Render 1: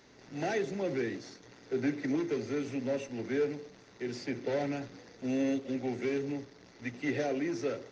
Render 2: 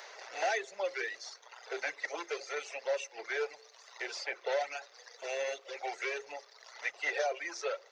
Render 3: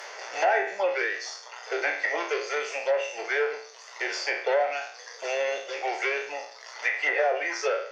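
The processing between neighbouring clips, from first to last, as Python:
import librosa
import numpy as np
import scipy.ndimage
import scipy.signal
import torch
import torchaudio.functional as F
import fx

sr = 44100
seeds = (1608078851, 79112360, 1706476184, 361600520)

y1 = scipy.signal.sosfilt(scipy.signal.cheby2(4, 40, 280.0, 'highpass', fs=sr, output='sos'), x)
y1 = fx.dereverb_blind(y1, sr, rt60_s=1.4)
y1 = fx.band_squash(y1, sr, depth_pct=40)
y1 = y1 * 10.0 ** (6.5 / 20.0)
y2 = fx.spec_trails(y1, sr, decay_s=0.54)
y2 = fx.notch(y2, sr, hz=3900.0, q=6.3)
y2 = fx.env_lowpass_down(y2, sr, base_hz=1900.0, full_db=-27.0)
y2 = y2 * 10.0 ** (7.5 / 20.0)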